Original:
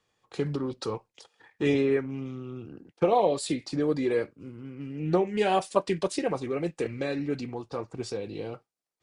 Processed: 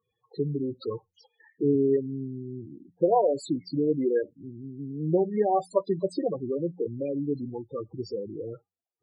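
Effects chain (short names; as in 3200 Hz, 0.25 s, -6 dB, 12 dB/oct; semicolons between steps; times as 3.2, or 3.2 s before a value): loudest bins only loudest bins 8; de-hum 89.23 Hz, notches 2; gain +1.5 dB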